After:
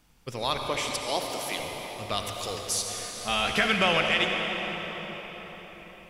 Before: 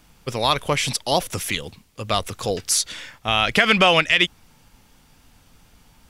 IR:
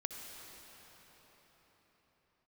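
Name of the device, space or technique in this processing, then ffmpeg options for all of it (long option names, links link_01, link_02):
cathedral: -filter_complex "[0:a]asettb=1/sr,asplit=3[link_01][link_02][link_03];[link_01]atrim=end=0.684[link_04];[link_02]atrim=start=0.68:end=1.59,asetpts=PTS-STARTPTS,afade=type=in:duration=0.004:curve=qsin,afade=type=out:start_time=0.906:duration=0.004:curve=qsin,highpass=frequency=220:width=0.5412,highpass=frequency=220:width=1.3066[link_05];[link_03]atrim=start=1.586[link_06];[link_04][link_05]acrossfade=duration=0.004:curve1=hsin:curve2=qsin[link_07];[link_07][link_06]acrossfade=duration=0.004:curve1=qsin:curve2=hsin,asettb=1/sr,asplit=3[link_08][link_09][link_10];[link_08]atrim=end=2.174[link_11];[link_09]atrim=start=2.17:end=2.62,asetpts=PTS-STARTPTS,afade=type=in:duration=0.004:curve=qsin,afade=type=out:start_time=0.446:duration=0.004:curve=qsin,tiltshelf=frequency=970:gain=-6[link_12];[link_10]atrim=start=2.616[link_13];[link_11][link_12]acrossfade=duration=0.004:curve1=hsin:curve2=qsin[link_14];[link_14][link_13]acrossfade=duration=0.004:curve1=qsin:curve2=hsin[link_15];[1:a]atrim=start_sample=2205[link_16];[link_15][link_16]afir=irnorm=-1:irlink=0,asettb=1/sr,asplit=3[link_17][link_18][link_19];[link_17]atrim=end=3.164[link_20];[link_18]atrim=start=3.16:end=3.68,asetpts=PTS-STARTPTS,afade=type=in:duration=0.004:curve=qsin,afade=type=out:start_time=0.516:duration=0.004:curve=qsin,asplit=2[link_21][link_22];[link_22]adelay=14,volume=-3dB[link_23];[link_21][link_23]amix=inputs=2:normalize=0,atrim=end_sample=22932[link_24];[link_19]atrim=start=3.676[link_25];[link_20][link_24]acrossfade=duration=0.004:curve1=hsin:curve2=qsin[link_26];[link_26][link_25]acrossfade=duration=0.004:curve1=qsin:curve2=hsin,volume=-6.5dB"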